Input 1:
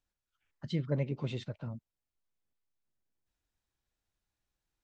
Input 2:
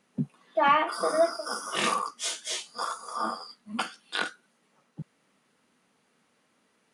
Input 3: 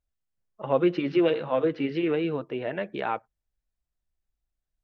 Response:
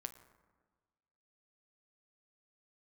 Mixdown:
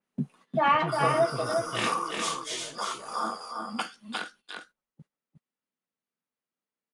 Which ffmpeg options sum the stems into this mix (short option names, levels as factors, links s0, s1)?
-filter_complex "[0:a]adelay=100,volume=0.75[s0];[1:a]adynamicequalizer=threshold=0.00631:dfrequency=3900:dqfactor=0.7:tfrequency=3900:tqfactor=0.7:attack=5:release=100:ratio=0.375:range=2:mode=cutabove:tftype=highshelf,volume=0.891,afade=t=out:st=3.77:d=0.65:silence=0.266073,asplit=2[s1][s2];[s2]volume=0.596[s3];[2:a]asoftclip=type=tanh:threshold=0.0473,volume=0.2,asplit=2[s4][s5];[s5]volume=0.531[s6];[s3][s6]amix=inputs=2:normalize=0,aecho=0:1:354:1[s7];[s0][s1][s4][s7]amix=inputs=4:normalize=0,agate=range=0.178:threshold=0.00224:ratio=16:detection=peak"